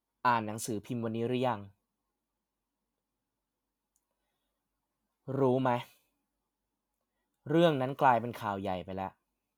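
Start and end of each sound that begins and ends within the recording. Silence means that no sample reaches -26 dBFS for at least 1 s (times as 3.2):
5.3–5.78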